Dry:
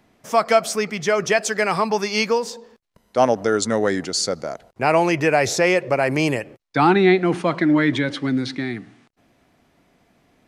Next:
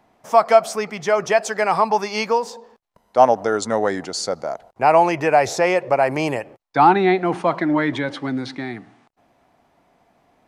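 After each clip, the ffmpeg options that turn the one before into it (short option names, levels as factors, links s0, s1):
-af "equalizer=f=830:t=o:w=1.2:g=11,volume=0.596"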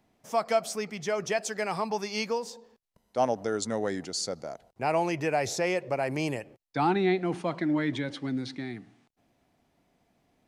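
-af "equalizer=f=970:w=0.62:g=-10.5,volume=0.596"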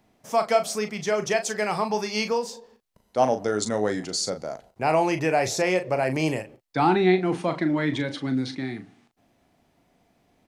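-filter_complex "[0:a]asplit=2[s0][s1];[s1]adelay=38,volume=0.355[s2];[s0][s2]amix=inputs=2:normalize=0,volume=1.68"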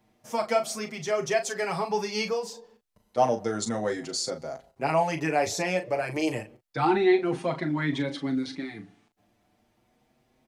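-filter_complex "[0:a]asplit=2[s0][s1];[s1]adelay=6.2,afreqshift=0.31[s2];[s0][s2]amix=inputs=2:normalize=1"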